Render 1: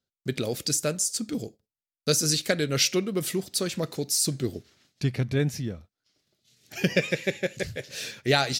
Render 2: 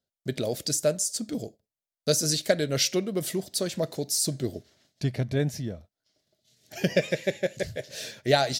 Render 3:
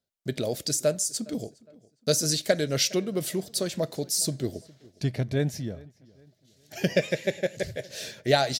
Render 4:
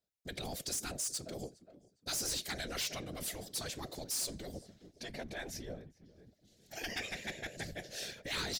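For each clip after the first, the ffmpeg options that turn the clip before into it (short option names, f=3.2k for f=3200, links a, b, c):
-af "equalizer=f=630:t=o:w=0.33:g=10,equalizer=f=1.25k:t=o:w=0.33:g=-5,equalizer=f=2.5k:t=o:w=0.33:g=-5,volume=-1.5dB"
-filter_complex "[0:a]asplit=2[a][b];[b]adelay=411,lowpass=f=3.1k:p=1,volume=-23dB,asplit=2[c][d];[d]adelay=411,lowpass=f=3.1k:p=1,volume=0.4,asplit=2[e][f];[f]adelay=411,lowpass=f=3.1k:p=1,volume=0.4[g];[a][c][e][g]amix=inputs=4:normalize=0"
-af "afftfilt=real='hypot(re,im)*cos(2*PI*random(0))':imag='hypot(re,im)*sin(2*PI*random(1))':win_size=512:overlap=0.75,afftfilt=real='re*lt(hypot(re,im),0.0708)':imag='im*lt(hypot(re,im),0.0708)':win_size=1024:overlap=0.75,volume=33.5dB,asoftclip=hard,volume=-33.5dB,volume=1dB"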